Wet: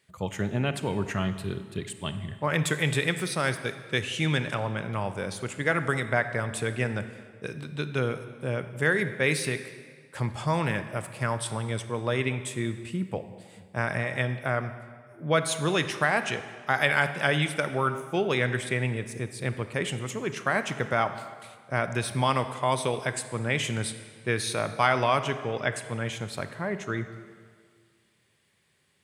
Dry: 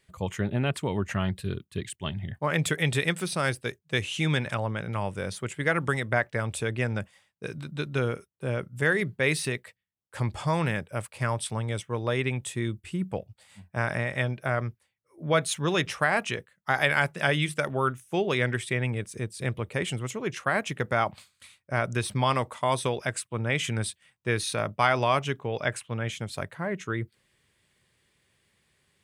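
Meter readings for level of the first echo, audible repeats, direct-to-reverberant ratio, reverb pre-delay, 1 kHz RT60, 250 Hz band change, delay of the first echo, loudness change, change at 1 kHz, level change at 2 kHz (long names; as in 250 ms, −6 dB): no echo audible, no echo audible, 10.0 dB, 25 ms, 1.9 s, 0.0 dB, no echo audible, 0.0 dB, +0.5 dB, +0.5 dB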